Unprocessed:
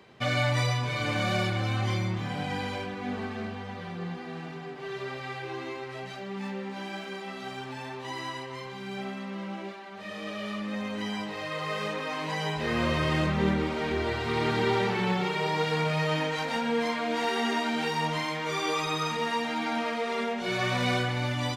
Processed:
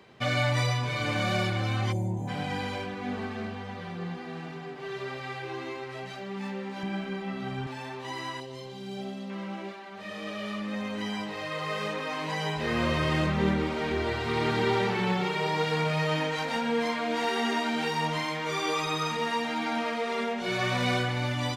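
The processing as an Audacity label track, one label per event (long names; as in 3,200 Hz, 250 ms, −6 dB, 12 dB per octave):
1.920000	2.280000	gain on a spectral selection 1,000–6,100 Hz −23 dB
6.830000	7.670000	bass and treble bass +13 dB, treble −8 dB
8.400000	9.300000	flat-topped bell 1,500 Hz −10 dB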